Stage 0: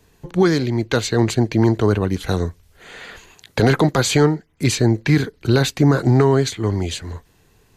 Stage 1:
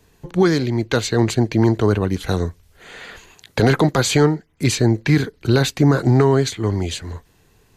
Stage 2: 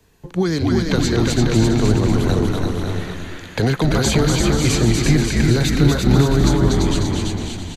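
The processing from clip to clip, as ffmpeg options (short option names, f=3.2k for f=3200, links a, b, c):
-af anull
-filter_complex "[0:a]asplit=2[a][b];[b]asplit=5[c][d][e][f][g];[c]adelay=241,afreqshift=-91,volume=-3.5dB[h];[d]adelay=482,afreqshift=-182,volume=-11dB[i];[e]adelay=723,afreqshift=-273,volume=-18.6dB[j];[f]adelay=964,afreqshift=-364,volume=-26.1dB[k];[g]adelay=1205,afreqshift=-455,volume=-33.6dB[l];[h][i][j][k][l]amix=inputs=5:normalize=0[m];[a][m]amix=inputs=2:normalize=0,acrossover=split=260|3000[n][o][p];[o]acompressor=threshold=-20dB:ratio=6[q];[n][q][p]amix=inputs=3:normalize=0,asplit=2[r][s];[s]aecho=0:1:340|544|666.4|739.8|783.9:0.631|0.398|0.251|0.158|0.1[t];[r][t]amix=inputs=2:normalize=0,volume=-1dB"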